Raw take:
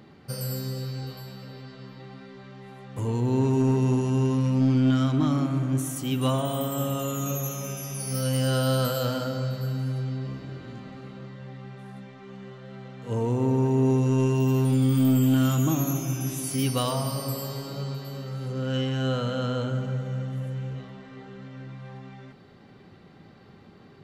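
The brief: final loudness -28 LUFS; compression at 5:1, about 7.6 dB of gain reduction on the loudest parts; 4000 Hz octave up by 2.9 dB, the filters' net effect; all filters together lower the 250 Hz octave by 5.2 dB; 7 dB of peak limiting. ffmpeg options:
-af "equalizer=f=250:t=o:g=-6,equalizer=f=4k:t=o:g=4,acompressor=threshold=-30dB:ratio=5,volume=9dB,alimiter=limit=-19.5dB:level=0:latency=1"

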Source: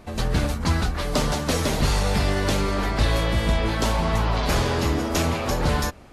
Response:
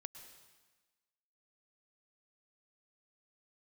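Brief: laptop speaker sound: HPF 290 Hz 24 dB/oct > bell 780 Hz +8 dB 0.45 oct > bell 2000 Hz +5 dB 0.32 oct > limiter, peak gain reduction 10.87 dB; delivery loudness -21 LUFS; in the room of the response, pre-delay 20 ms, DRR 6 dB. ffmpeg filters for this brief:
-filter_complex "[0:a]asplit=2[a][b];[1:a]atrim=start_sample=2205,adelay=20[c];[b][c]afir=irnorm=-1:irlink=0,volume=-1dB[d];[a][d]amix=inputs=2:normalize=0,highpass=f=290:w=0.5412,highpass=f=290:w=1.3066,equalizer=f=780:t=o:w=0.45:g=8,equalizer=f=2k:t=o:w=0.32:g=5,volume=7dB,alimiter=limit=-12.5dB:level=0:latency=1"

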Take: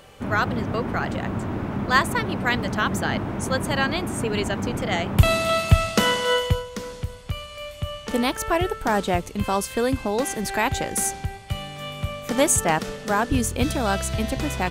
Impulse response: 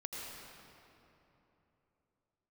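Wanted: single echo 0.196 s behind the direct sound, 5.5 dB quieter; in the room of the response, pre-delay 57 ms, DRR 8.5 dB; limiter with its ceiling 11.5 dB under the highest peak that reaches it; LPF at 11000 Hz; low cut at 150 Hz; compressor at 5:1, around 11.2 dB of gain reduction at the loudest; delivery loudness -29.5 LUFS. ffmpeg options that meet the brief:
-filter_complex "[0:a]highpass=150,lowpass=11k,acompressor=threshold=-27dB:ratio=5,alimiter=limit=-21dB:level=0:latency=1,aecho=1:1:196:0.531,asplit=2[a][b];[1:a]atrim=start_sample=2205,adelay=57[c];[b][c]afir=irnorm=-1:irlink=0,volume=-8.5dB[d];[a][d]amix=inputs=2:normalize=0,volume=1dB"

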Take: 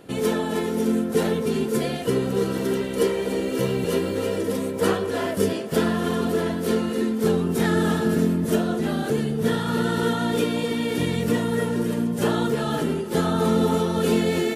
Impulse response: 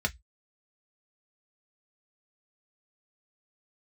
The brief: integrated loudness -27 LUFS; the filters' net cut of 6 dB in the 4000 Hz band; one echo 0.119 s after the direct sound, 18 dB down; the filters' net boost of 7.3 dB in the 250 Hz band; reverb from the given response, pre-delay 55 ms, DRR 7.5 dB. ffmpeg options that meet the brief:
-filter_complex "[0:a]equalizer=f=250:t=o:g=9,equalizer=f=4k:t=o:g=-8,aecho=1:1:119:0.126,asplit=2[a][b];[1:a]atrim=start_sample=2205,adelay=55[c];[b][c]afir=irnorm=-1:irlink=0,volume=-14.5dB[d];[a][d]amix=inputs=2:normalize=0,volume=-9.5dB"

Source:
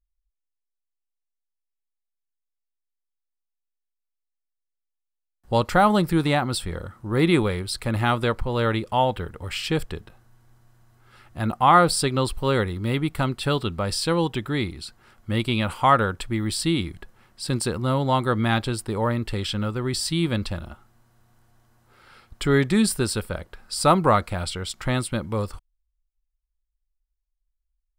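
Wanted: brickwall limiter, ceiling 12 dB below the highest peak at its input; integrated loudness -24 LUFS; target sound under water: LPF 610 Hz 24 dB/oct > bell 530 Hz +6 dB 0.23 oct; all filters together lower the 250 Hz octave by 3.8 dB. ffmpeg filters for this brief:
-af "equalizer=f=250:t=o:g=-5.5,alimiter=limit=-16.5dB:level=0:latency=1,lowpass=f=610:w=0.5412,lowpass=f=610:w=1.3066,equalizer=f=530:t=o:w=0.23:g=6,volume=5.5dB"

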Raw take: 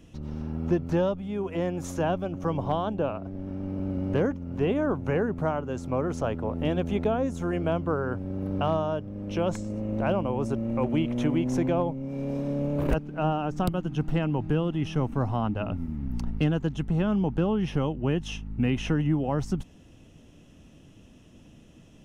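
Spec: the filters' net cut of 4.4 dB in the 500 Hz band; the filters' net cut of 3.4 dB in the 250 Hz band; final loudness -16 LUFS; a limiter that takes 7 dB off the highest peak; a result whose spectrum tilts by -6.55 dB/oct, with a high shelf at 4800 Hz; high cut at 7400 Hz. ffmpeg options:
-af "lowpass=7.4k,equalizer=f=250:t=o:g=-3.5,equalizer=f=500:t=o:g=-4.5,highshelf=f=4.8k:g=-6,volume=17dB,alimiter=limit=-5dB:level=0:latency=1"

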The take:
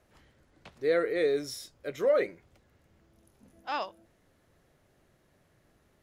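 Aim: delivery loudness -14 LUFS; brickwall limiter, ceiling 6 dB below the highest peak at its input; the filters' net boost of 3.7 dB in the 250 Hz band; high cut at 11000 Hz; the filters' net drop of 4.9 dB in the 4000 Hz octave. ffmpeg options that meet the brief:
-af "lowpass=11k,equalizer=f=250:t=o:g=5.5,equalizer=f=4k:t=o:g=-6.5,volume=17.5dB,alimiter=limit=-3dB:level=0:latency=1"

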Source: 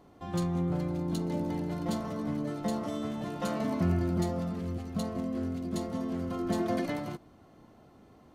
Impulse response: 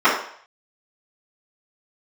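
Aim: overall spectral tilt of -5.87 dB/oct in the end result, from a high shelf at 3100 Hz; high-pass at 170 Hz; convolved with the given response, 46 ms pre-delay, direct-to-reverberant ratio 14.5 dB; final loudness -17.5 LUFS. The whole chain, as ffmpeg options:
-filter_complex "[0:a]highpass=170,highshelf=f=3.1k:g=5,asplit=2[a][b];[1:a]atrim=start_sample=2205,adelay=46[c];[b][c]afir=irnorm=-1:irlink=0,volume=-39dB[d];[a][d]amix=inputs=2:normalize=0,volume=16.5dB"

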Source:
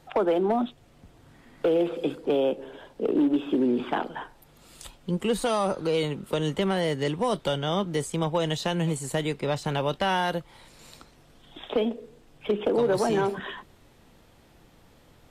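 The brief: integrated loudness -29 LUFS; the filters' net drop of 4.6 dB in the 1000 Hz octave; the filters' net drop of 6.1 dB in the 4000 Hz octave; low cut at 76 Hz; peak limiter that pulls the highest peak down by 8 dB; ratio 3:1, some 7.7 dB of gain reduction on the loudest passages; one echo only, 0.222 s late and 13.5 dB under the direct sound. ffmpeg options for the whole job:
-af "highpass=76,equalizer=f=1k:t=o:g=-6,equalizer=f=4k:t=o:g=-8.5,acompressor=threshold=-31dB:ratio=3,alimiter=level_in=4dB:limit=-24dB:level=0:latency=1,volume=-4dB,aecho=1:1:222:0.211,volume=8dB"

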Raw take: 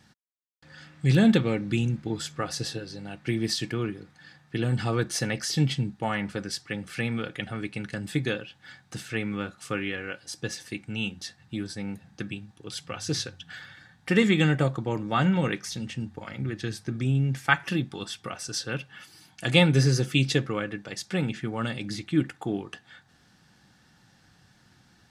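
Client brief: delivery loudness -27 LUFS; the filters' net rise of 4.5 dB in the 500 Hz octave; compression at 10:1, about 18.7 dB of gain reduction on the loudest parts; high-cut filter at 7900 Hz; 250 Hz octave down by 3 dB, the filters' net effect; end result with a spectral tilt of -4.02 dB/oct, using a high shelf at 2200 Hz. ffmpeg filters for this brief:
-af "lowpass=7.9k,equalizer=f=250:t=o:g=-6.5,equalizer=f=500:t=o:g=7,highshelf=f=2.2k:g=4,acompressor=threshold=-32dB:ratio=10,volume=10.5dB"

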